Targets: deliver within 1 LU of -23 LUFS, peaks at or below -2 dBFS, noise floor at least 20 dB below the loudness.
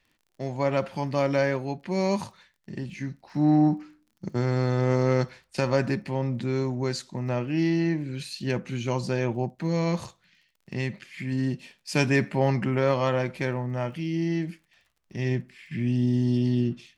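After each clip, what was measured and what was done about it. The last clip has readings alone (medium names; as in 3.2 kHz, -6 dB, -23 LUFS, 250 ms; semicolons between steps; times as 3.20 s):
tick rate 27 per s; loudness -27.0 LUFS; peak level -9.5 dBFS; loudness target -23.0 LUFS
-> de-click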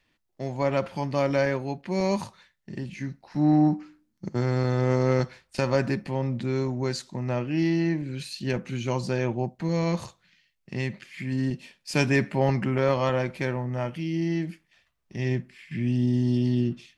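tick rate 0.059 per s; loudness -27.0 LUFS; peak level -9.5 dBFS; loudness target -23.0 LUFS
-> trim +4 dB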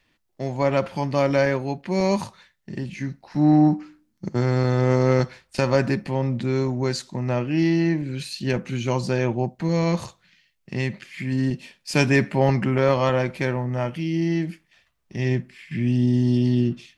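loudness -23.0 LUFS; peak level -5.5 dBFS; noise floor -69 dBFS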